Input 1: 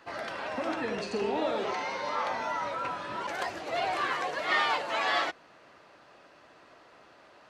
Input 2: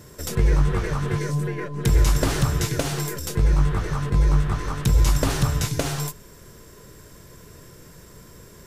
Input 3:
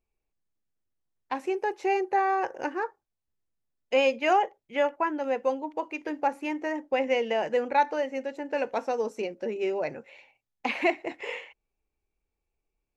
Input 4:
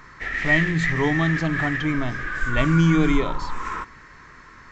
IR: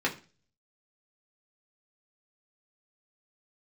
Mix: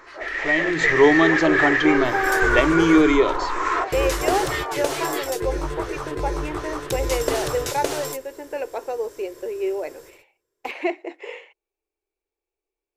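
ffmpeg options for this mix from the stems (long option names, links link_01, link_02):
-filter_complex "[0:a]acrossover=split=1400[link_01][link_02];[link_01]aeval=exprs='val(0)*(1-1/2+1/2*cos(2*PI*4.7*n/s))':channel_layout=same[link_03];[link_02]aeval=exprs='val(0)*(1-1/2-1/2*cos(2*PI*4.7*n/s))':channel_layout=same[link_04];[link_03][link_04]amix=inputs=2:normalize=0,volume=-3.5dB[link_05];[1:a]adelay=2050,volume=-6dB[link_06];[2:a]volume=-8dB,asplit=2[link_07][link_08];[3:a]alimiter=limit=-11dB:level=0:latency=1:release=394,dynaudnorm=framelen=450:gausssize=3:maxgain=11.5dB,volume=-7.5dB[link_09];[link_08]apad=whole_len=472376[link_10];[link_06][link_10]sidechaingate=range=-33dB:threshold=-57dB:ratio=16:detection=peak[link_11];[link_05][link_11][link_07][link_09]amix=inputs=4:normalize=0,lowshelf=frequency=270:width_type=q:width=3:gain=-10,acontrast=36"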